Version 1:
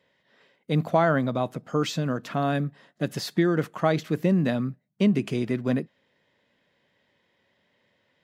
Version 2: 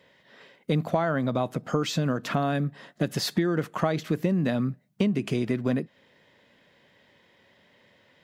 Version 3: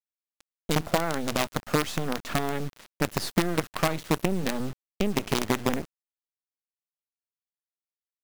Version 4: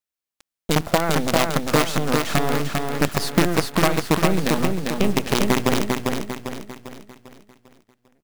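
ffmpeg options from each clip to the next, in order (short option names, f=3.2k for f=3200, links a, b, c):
-af "acompressor=threshold=-32dB:ratio=4,volume=8.5dB"
-af "acrusher=bits=4:dc=4:mix=0:aa=0.000001"
-af "aecho=1:1:398|796|1194|1592|1990|2388:0.668|0.294|0.129|0.0569|0.0251|0.011,volume=5.5dB"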